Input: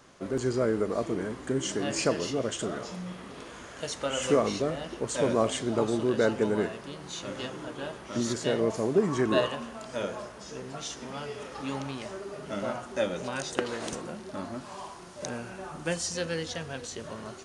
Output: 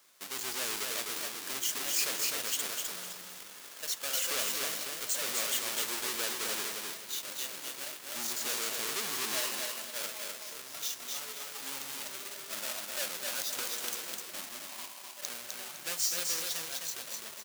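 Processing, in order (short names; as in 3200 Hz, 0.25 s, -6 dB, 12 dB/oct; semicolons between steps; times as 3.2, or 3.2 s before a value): half-waves squared off; high shelf 7600 Hz -6 dB; in parallel at -5.5 dB: bit-crush 6-bit; on the sum: differentiator; hard clip -18.5 dBFS, distortion -10 dB; on a send: feedback echo 0.255 s, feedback 30%, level -3.5 dB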